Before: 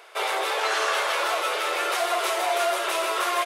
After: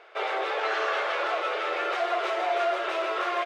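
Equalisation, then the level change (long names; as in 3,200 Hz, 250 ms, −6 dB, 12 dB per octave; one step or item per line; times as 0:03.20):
high-frequency loss of the air 190 metres
parametric band 980 Hz −6.5 dB 0.26 octaves
parametric band 4,700 Hz −4 dB 1.8 octaves
0.0 dB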